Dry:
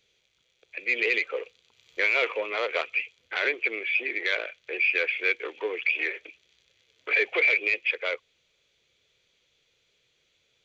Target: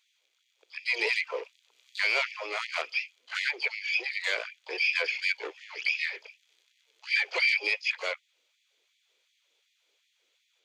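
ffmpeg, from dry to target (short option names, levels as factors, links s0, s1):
-filter_complex "[0:a]asplit=3[s0][s1][s2];[s1]asetrate=58866,aresample=44100,atempo=0.749154,volume=0.158[s3];[s2]asetrate=88200,aresample=44100,atempo=0.5,volume=0.282[s4];[s0][s3][s4]amix=inputs=3:normalize=0,afftfilt=real='re*gte(b*sr/1024,240*pow(1800/240,0.5+0.5*sin(2*PI*2.7*pts/sr)))':imag='im*gte(b*sr/1024,240*pow(1800/240,0.5+0.5*sin(2*PI*2.7*pts/sr)))':win_size=1024:overlap=0.75,volume=0.708"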